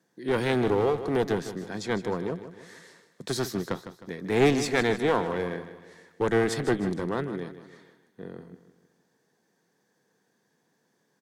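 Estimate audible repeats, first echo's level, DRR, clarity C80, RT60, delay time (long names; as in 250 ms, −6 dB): 4, −12.0 dB, no reverb audible, no reverb audible, no reverb audible, 155 ms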